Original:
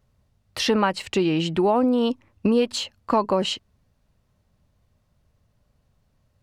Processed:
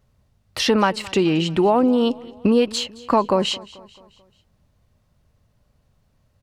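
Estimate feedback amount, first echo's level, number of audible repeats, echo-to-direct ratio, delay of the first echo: 50%, -21.0 dB, 3, -20.0 dB, 0.219 s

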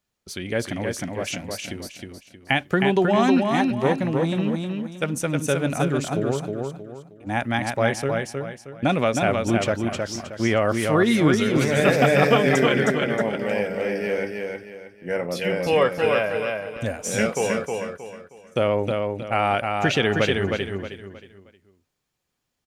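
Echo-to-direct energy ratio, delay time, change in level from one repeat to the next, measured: -3.5 dB, 0.314 s, -9.5 dB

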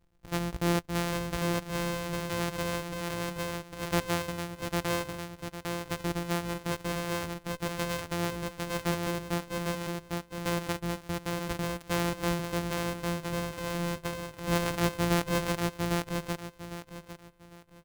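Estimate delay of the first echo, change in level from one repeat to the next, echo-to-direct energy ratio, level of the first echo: 0.803 s, -11.5 dB, -2.5 dB, -3.0 dB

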